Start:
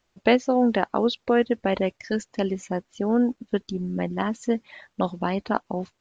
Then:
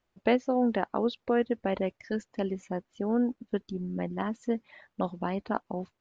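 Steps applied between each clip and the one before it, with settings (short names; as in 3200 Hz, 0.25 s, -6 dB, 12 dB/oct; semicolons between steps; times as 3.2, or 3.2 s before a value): high shelf 3600 Hz -10 dB; gain -5.5 dB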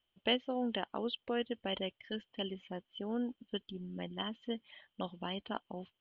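ladder low-pass 3200 Hz, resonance 90%; gain +3.5 dB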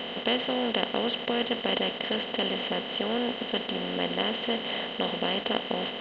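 per-bin compression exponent 0.2; gain +1.5 dB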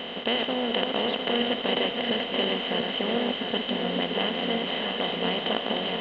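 regenerating reverse delay 0.351 s, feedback 60%, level -3.5 dB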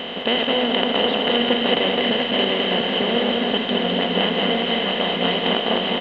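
echo 0.209 s -3.5 dB; gain +5.5 dB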